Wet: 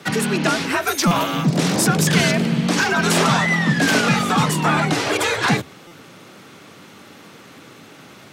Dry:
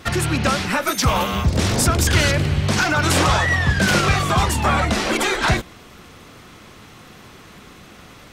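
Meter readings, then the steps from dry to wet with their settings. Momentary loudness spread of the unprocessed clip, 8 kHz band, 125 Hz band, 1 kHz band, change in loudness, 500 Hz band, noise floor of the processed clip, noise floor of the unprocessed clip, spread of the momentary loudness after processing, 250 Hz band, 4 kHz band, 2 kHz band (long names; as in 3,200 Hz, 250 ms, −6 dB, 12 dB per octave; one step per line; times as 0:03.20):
4 LU, 0.0 dB, −2.0 dB, 0.0 dB, +0.5 dB, +1.0 dB, −44 dBFS, −44 dBFS, 4 LU, +4.0 dB, 0.0 dB, +0.5 dB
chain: frequency shifter +82 Hz
buffer that repeats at 0:01.07/0:05.87, samples 256, times 6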